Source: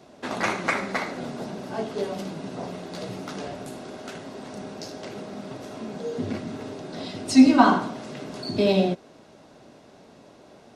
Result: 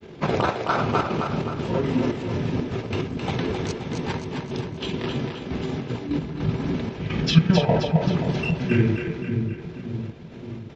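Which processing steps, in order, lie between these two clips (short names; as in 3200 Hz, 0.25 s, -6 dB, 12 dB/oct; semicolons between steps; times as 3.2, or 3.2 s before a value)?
in parallel at -2.5 dB: negative-ratio compressor -30 dBFS, ratio -0.5; on the sum: pitch shift -8.5 st; step gate "xxxxx..xxx.x.x.." 150 bpm -12 dB; grains, spray 20 ms, pitch spread up and down by 0 st; split-band echo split 330 Hz, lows 0.574 s, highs 0.264 s, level -5 dB; gain +3 dB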